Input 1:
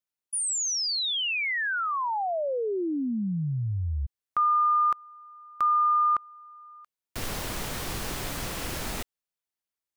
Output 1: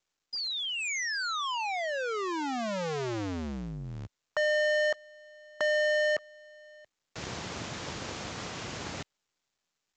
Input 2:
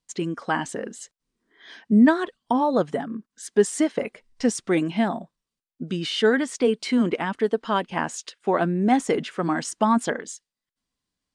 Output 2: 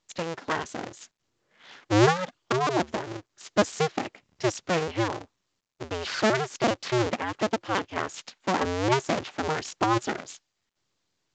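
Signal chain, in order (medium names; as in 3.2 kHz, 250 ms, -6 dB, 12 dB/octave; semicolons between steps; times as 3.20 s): cycle switcher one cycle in 2, inverted; high-pass 100 Hz 12 dB/octave; trim -4 dB; µ-law 128 kbps 16 kHz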